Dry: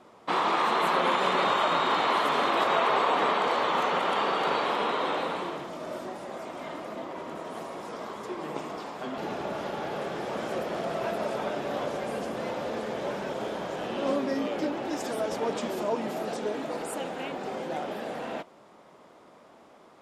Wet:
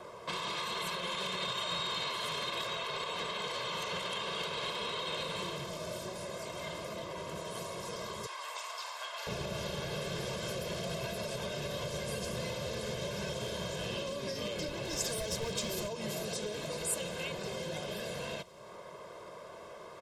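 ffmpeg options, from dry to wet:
-filter_complex "[0:a]asettb=1/sr,asplit=3[a][b][c];[a]atrim=end=8.264[d];[b]atrim=start=8.26:end=9.27,asetpts=PTS-STARTPTS,afade=t=in:d=0.004:c=qsin,afade=t=out:st=1.006:d=0.004:c=qsin,highpass=f=780:w=0.5412,highpass=f=780:w=1.3066[e];[c]atrim=start=9.266[f];[d][e]acrossfade=d=0.004:c1=hsin:c2=qsin[g];[g][f]acrossfade=d=0.004:c1=qsin:c2=hsin,asettb=1/sr,asplit=3[h][i][j];[h]atrim=end=14.674[k];[i]atrim=start=14.67:end=15.87,asetpts=PTS-STARTPTS,afade=t=in:d=0.004:c=qsin,afade=t=out:st=1.196:d=0.004:c=qsin,asoftclip=type=hard:threshold=-26dB[l];[j]atrim=start=15.866[m];[k][l]acrossfade=d=0.004:c1=hsin:c2=qsin[n];[n][m]acrossfade=d=0.004:c1=qsin:c2=hsin,aecho=1:1:1.9:0.84,alimiter=limit=-21dB:level=0:latency=1:release=98,acrossover=split=200|3000[o][p][q];[p]acompressor=threshold=-51dB:ratio=3[r];[o][r][q]amix=inputs=3:normalize=0,volume=5.5dB"

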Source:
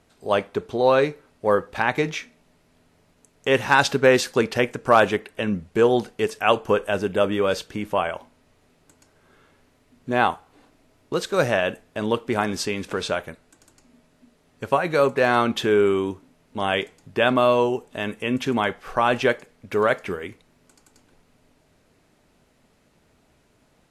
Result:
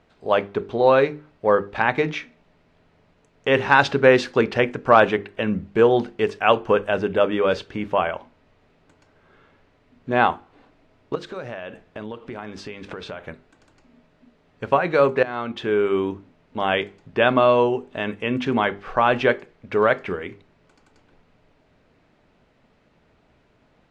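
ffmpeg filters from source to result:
-filter_complex "[0:a]asettb=1/sr,asplit=3[a][b][c];[a]atrim=end=11.154[d];[b]atrim=start=11.15:end=13.28,asetpts=PTS-STARTPTS,afade=t=in:d=0.004:c=qsin,afade=t=out:st=2.126:d=0.004:c=qsin,acompressor=threshold=-31dB:ratio=8:attack=3.2:release=140:knee=1:detection=peak[e];[c]atrim=start=13.276[f];[d][e]acrossfade=d=0.004:c1=hsin:c2=qsin[g];[g][f]acrossfade=d=0.004:c1=qsin:c2=hsin,asplit=2[h][i];[h]atrim=end=15.23,asetpts=PTS-STARTPTS,afade=t=out:st=15.226:d=0.004:c=hsin:silence=0.141254[j];[i]atrim=start=15.23,asetpts=PTS-STARTPTS,afade=t=in:d=0.87:silence=0.141254[k];[j][k]concat=n=2:v=0:a=1,lowpass=3.4k,bandreject=f=50:t=h:w=6,bandreject=f=100:t=h:w=6,bandreject=f=150:t=h:w=6,bandreject=f=200:t=h:w=6,bandreject=f=250:t=h:w=6,bandreject=f=300:t=h:w=6,bandreject=f=350:t=h:w=6,bandreject=f=400:t=h:w=6,volume=2dB"

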